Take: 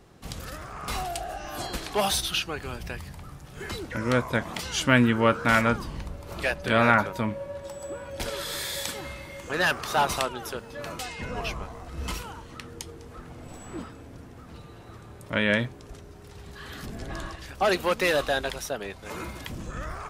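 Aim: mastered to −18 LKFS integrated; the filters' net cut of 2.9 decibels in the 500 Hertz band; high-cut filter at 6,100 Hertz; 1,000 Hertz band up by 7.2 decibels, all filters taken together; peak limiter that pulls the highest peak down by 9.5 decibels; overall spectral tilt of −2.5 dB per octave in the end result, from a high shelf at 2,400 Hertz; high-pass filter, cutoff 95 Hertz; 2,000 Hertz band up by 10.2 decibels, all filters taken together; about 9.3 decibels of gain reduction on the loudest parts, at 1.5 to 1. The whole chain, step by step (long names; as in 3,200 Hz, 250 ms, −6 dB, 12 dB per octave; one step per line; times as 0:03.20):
high-pass filter 95 Hz
low-pass filter 6,100 Hz
parametric band 500 Hz −7 dB
parametric band 1,000 Hz +7 dB
parametric band 2,000 Hz +8.5 dB
high-shelf EQ 2,400 Hz +6 dB
downward compressor 1.5 to 1, threshold −33 dBFS
level +12 dB
brickwall limiter −3.5 dBFS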